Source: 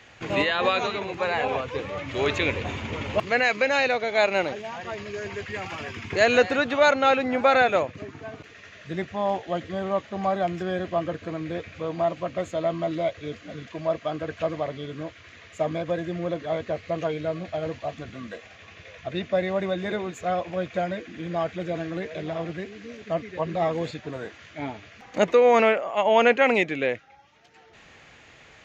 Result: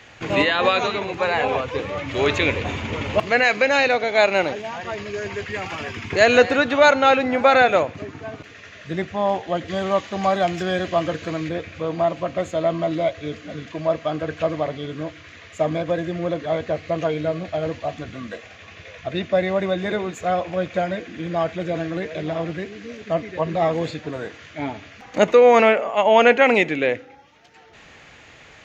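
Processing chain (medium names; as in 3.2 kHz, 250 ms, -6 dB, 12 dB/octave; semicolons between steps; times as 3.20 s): 9.68–11.49 s: treble shelf 2.3 kHz +9.5 dB; FDN reverb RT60 0.71 s, low-frequency decay 1.25×, high-frequency decay 0.9×, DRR 18 dB; trim +4.5 dB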